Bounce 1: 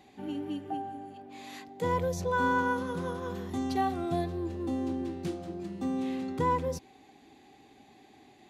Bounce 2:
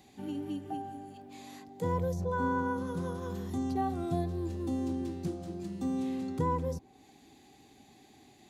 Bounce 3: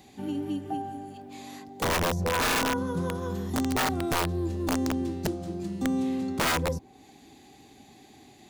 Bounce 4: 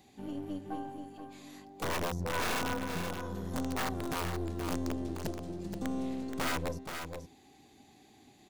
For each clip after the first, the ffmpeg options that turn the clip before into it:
ffmpeg -i in.wav -filter_complex "[0:a]bass=frequency=250:gain=6,treble=frequency=4000:gain=10,acrossover=split=1400[link_01][link_02];[link_02]acompressor=threshold=-50dB:ratio=10[link_03];[link_01][link_03]amix=inputs=2:normalize=0,volume=-3.5dB" out.wav
ffmpeg -i in.wav -af "aeval=exprs='(mod(18.8*val(0)+1,2)-1)/18.8':channel_layout=same,volume=5.5dB" out.wav
ffmpeg -i in.wav -filter_complex "[0:a]aeval=exprs='(tanh(20*val(0)+0.5)-tanh(0.5))/20':channel_layout=same,asplit=2[link_01][link_02];[link_02]acrusher=bits=3:mix=0:aa=0.5,volume=-5.5dB[link_03];[link_01][link_03]amix=inputs=2:normalize=0,aecho=1:1:476:0.447,volume=-5.5dB" out.wav

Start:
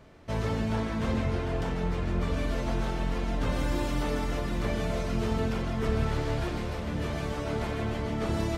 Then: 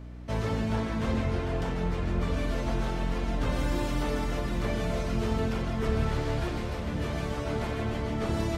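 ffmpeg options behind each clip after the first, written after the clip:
ffmpeg -i in.wav -af "aeval=exprs='val(0)+0.00891*(sin(2*PI*60*n/s)+sin(2*PI*2*60*n/s)/2+sin(2*PI*3*60*n/s)/3+sin(2*PI*4*60*n/s)/4+sin(2*PI*5*60*n/s)/5)':channel_layout=same" out.wav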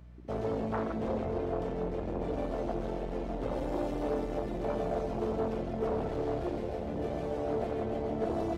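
ffmpeg -i in.wav -af "afwtdn=0.0355,aeval=exprs='0.158*sin(PI/2*2.24*val(0)/0.158)':channel_layout=same,bass=frequency=250:gain=-14,treble=frequency=4000:gain=-2,volume=-5dB" out.wav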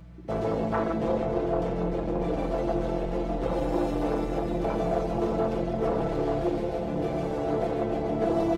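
ffmpeg -i in.wav -af "aecho=1:1:6:0.65,volume=5dB" out.wav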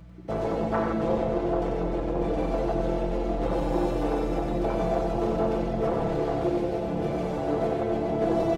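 ffmpeg -i in.wav -af "aecho=1:1:94:0.531" out.wav

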